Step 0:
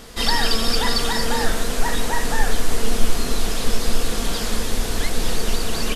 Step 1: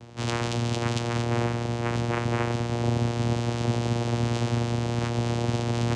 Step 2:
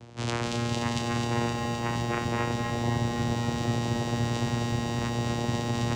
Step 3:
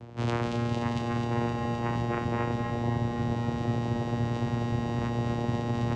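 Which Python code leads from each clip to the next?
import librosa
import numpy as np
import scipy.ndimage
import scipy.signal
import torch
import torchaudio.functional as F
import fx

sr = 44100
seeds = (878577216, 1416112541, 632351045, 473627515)

y1 = fx.rider(x, sr, range_db=10, speed_s=2.0)
y1 = fx.vocoder(y1, sr, bands=4, carrier='saw', carrier_hz=118.0)
y2 = fx.echo_crushed(y1, sr, ms=259, feedback_pct=80, bits=9, wet_db=-5.5)
y2 = y2 * librosa.db_to_amplitude(-2.0)
y3 = fx.lowpass(y2, sr, hz=1400.0, slope=6)
y3 = fx.rider(y3, sr, range_db=10, speed_s=0.5)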